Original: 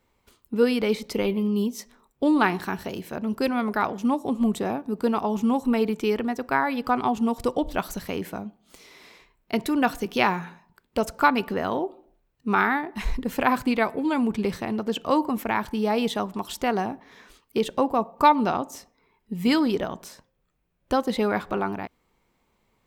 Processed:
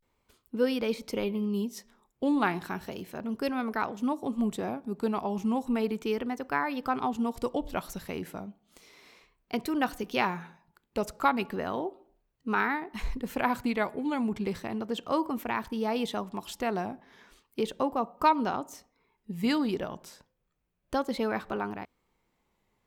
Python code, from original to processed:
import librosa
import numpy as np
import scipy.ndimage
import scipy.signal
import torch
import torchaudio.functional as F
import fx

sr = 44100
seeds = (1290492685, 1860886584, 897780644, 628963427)

y = fx.vibrato(x, sr, rate_hz=0.34, depth_cents=84.0)
y = y * librosa.db_to_amplitude(-6.0)